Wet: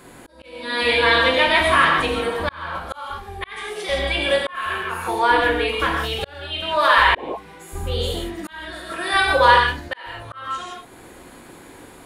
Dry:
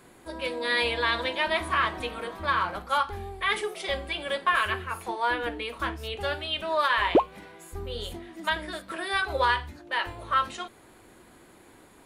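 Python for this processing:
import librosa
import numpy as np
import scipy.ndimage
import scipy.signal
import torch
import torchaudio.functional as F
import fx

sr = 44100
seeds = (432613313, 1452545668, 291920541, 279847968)

y = fx.rev_gated(x, sr, seeds[0], gate_ms=190, shape='flat', drr_db=-1.0)
y = fx.auto_swell(y, sr, attack_ms=744.0)
y = y * librosa.db_to_amplitude(7.5)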